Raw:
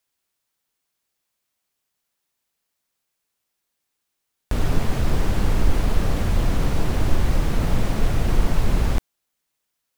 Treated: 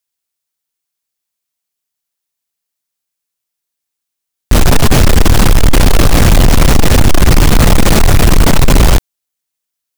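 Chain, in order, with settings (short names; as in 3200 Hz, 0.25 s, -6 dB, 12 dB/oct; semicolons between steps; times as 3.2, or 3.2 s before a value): high shelf 3300 Hz +8 dB; sample leveller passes 5; gain +3 dB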